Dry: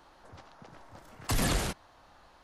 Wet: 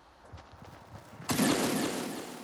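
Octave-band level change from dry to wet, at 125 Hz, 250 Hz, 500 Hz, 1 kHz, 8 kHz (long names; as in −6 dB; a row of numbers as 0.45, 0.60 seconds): −4.0, +7.0, +5.5, +2.5, +1.5 decibels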